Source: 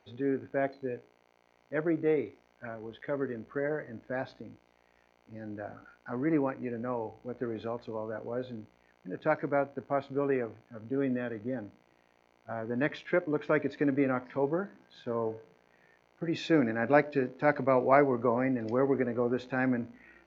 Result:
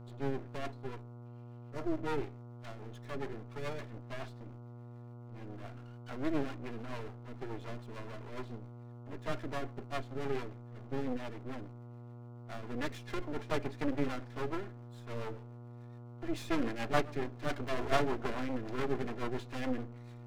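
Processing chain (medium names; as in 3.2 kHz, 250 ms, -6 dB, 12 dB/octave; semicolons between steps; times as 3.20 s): comb filter that takes the minimum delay 2.9 ms; spectral replace 1.28–1.95 s, 1.4–4.2 kHz before; half-wave rectifier; rotary cabinet horn 7 Hz; mains buzz 120 Hz, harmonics 12, -50 dBFS -8 dB/octave; trim +1 dB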